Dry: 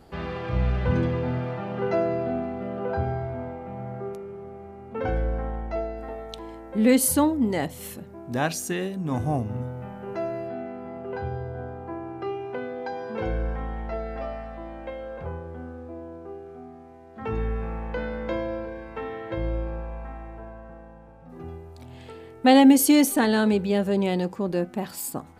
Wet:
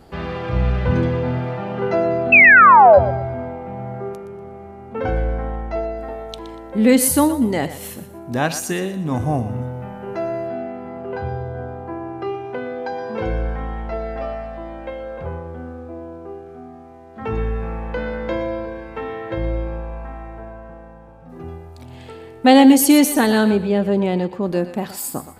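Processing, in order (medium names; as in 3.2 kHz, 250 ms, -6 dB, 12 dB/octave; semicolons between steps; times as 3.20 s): 2.32–2.99 s: painted sound fall 540–2700 Hz -13 dBFS; 23.50–24.43 s: treble shelf 3.2 kHz -10.5 dB; thinning echo 120 ms, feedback 31%, level -12 dB; trim +5 dB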